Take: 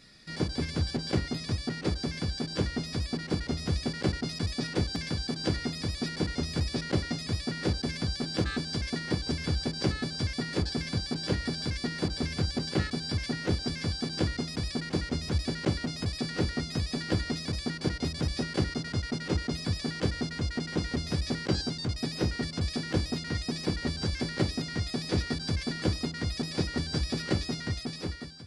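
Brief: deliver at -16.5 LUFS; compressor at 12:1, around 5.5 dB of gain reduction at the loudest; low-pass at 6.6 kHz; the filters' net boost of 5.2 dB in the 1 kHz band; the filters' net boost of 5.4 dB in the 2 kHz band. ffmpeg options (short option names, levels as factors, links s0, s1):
-af "lowpass=6600,equalizer=f=1000:t=o:g=6,equalizer=f=2000:t=o:g=4.5,acompressor=threshold=0.0447:ratio=12,volume=6.68"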